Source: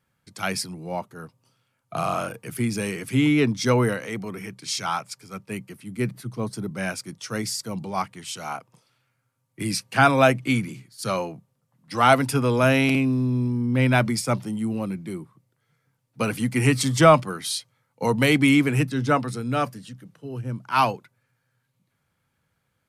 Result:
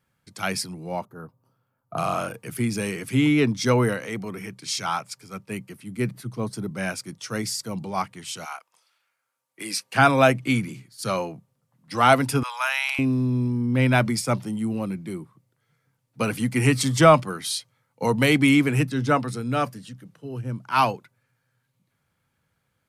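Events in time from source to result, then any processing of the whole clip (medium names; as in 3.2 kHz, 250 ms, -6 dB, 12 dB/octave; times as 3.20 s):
1.05–1.98 s: high-order bell 4.4 kHz -15.5 dB 2.7 oct
8.44–9.94 s: high-pass 1.2 kHz -> 350 Hz
12.43–12.99 s: elliptic high-pass 840 Hz, stop band 70 dB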